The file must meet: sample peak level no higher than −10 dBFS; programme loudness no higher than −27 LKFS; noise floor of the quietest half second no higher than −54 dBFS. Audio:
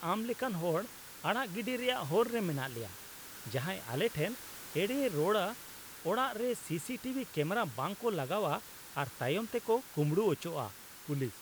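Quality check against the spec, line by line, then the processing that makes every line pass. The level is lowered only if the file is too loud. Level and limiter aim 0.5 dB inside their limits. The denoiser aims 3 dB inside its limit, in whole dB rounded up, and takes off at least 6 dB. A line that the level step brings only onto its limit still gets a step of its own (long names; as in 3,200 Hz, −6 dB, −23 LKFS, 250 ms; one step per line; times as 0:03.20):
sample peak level −16.0 dBFS: in spec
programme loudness −35.0 LKFS: in spec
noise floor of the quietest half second −49 dBFS: out of spec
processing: broadband denoise 8 dB, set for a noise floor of −49 dBFS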